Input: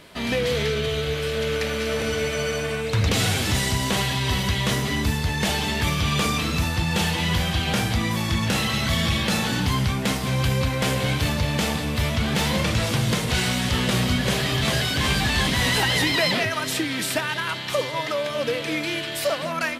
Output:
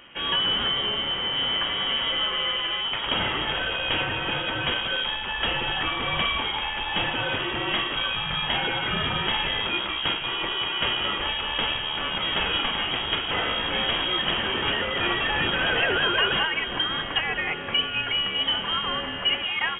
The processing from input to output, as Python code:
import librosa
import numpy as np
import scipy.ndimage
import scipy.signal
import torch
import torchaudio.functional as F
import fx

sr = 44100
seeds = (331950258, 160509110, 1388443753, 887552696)

y = fx.rattle_buzz(x, sr, strikes_db=-24.0, level_db=-24.0)
y = scipy.signal.sosfilt(scipy.signal.butter(6, 210.0, 'highpass', fs=sr, output='sos'), y)
y = fx.freq_invert(y, sr, carrier_hz=3500)